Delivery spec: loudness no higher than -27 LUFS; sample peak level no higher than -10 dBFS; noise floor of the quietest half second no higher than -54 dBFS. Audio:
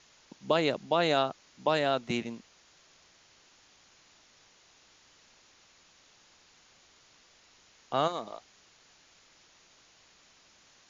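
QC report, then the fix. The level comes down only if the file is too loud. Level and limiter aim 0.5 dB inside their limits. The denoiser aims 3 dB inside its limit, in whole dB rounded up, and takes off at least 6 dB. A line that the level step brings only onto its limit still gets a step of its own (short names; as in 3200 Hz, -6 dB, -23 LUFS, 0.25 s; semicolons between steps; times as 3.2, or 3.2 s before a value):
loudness -30.0 LUFS: OK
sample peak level -13.0 dBFS: OK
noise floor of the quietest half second -62 dBFS: OK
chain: none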